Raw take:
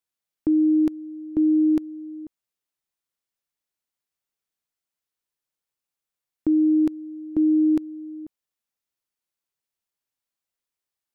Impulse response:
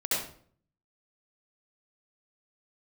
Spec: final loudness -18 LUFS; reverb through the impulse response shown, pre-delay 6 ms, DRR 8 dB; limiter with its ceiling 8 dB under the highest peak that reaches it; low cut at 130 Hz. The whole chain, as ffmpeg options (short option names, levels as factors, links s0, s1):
-filter_complex "[0:a]highpass=130,alimiter=limit=0.075:level=0:latency=1,asplit=2[s0][s1];[1:a]atrim=start_sample=2205,adelay=6[s2];[s1][s2]afir=irnorm=-1:irlink=0,volume=0.15[s3];[s0][s3]amix=inputs=2:normalize=0,volume=5.01"